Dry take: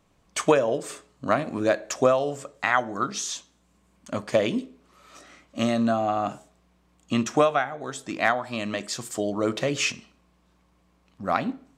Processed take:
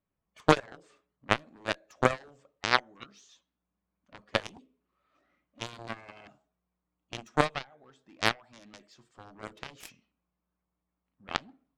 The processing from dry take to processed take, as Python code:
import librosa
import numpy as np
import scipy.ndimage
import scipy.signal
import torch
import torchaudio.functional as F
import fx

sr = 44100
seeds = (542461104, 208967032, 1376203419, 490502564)

y = fx.spec_quant(x, sr, step_db=15)
y = fx.env_lowpass(y, sr, base_hz=2400.0, full_db=-17.5)
y = fx.cheby_harmonics(y, sr, harmonics=(3,), levels_db=(-9,), full_scale_db=-6.5)
y = y * librosa.db_to_amplitude(3.0)